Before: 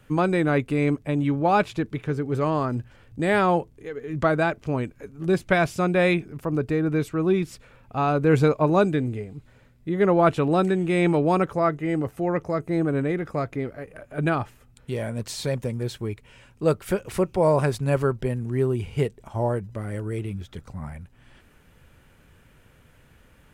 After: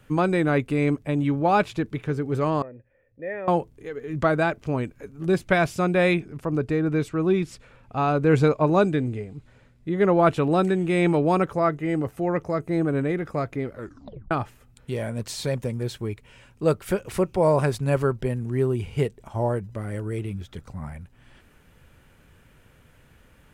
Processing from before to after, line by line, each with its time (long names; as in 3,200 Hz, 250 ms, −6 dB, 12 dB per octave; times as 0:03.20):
0:02.62–0:03.48: formant resonators in series e
0:06.20–0:10.17: low-pass filter 10,000 Hz
0:13.71: tape stop 0.60 s